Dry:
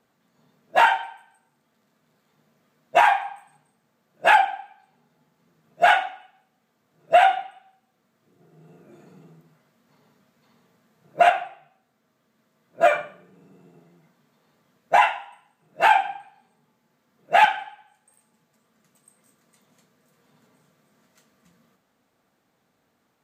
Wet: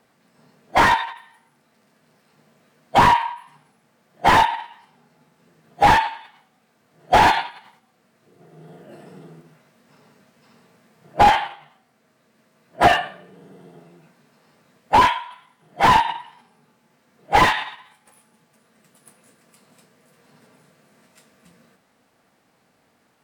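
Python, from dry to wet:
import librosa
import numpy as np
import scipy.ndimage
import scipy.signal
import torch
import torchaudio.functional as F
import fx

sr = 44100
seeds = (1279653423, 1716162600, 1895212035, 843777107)

y = fx.formant_shift(x, sr, semitones=3)
y = fx.slew_limit(y, sr, full_power_hz=140.0)
y = y * 10.0 ** (7.0 / 20.0)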